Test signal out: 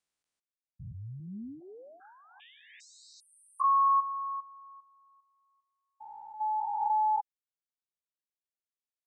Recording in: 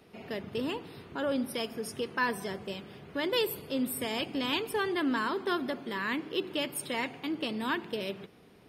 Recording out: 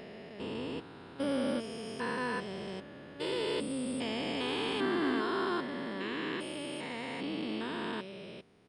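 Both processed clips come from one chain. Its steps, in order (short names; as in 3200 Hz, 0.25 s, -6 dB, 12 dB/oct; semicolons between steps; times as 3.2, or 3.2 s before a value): stepped spectrum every 0.4 s; downsampling 22050 Hz; upward expander 1.5:1, over -50 dBFS; gain +4 dB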